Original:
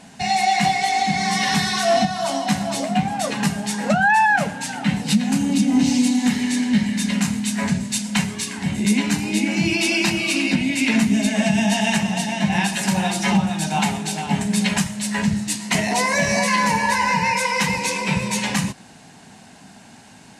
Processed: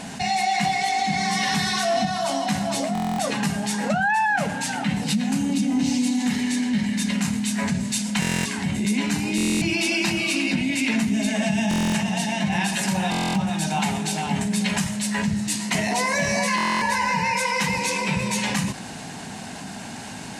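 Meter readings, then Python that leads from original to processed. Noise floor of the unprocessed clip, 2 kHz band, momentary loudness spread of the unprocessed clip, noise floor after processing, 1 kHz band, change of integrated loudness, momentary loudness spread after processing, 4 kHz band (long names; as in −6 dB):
−45 dBFS, −3.0 dB, 5 LU, −35 dBFS, −3.5 dB, −3.0 dB, 4 LU, −2.5 dB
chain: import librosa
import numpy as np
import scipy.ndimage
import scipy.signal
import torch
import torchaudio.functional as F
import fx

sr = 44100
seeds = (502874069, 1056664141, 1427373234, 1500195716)

y = fx.buffer_glitch(x, sr, at_s=(2.93, 8.2, 9.36, 11.69, 13.1, 16.56), block=1024, repeats=10)
y = fx.env_flatten(y, sr, amount_pct=50)
y = y * 10.0 ** (-6.5 / 20.0)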